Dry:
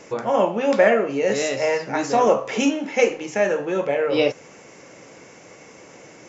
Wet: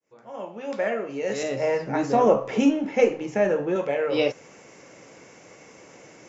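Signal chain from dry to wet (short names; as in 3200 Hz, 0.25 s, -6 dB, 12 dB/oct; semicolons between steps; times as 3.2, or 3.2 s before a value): opening faded in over 1.88 s; 1.43–3.76 tilt -2.5 dB/oct; gain -3.5 dB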